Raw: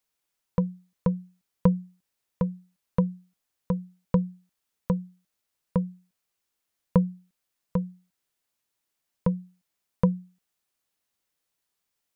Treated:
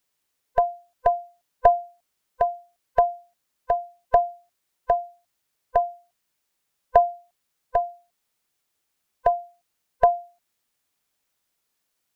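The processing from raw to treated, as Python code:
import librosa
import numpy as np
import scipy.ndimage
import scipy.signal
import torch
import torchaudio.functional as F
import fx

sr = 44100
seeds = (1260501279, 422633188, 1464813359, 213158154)

y = fx.band_swap(x, sr, width_hz=500)
y = y * 10.0 ** (4.5 / 20.0)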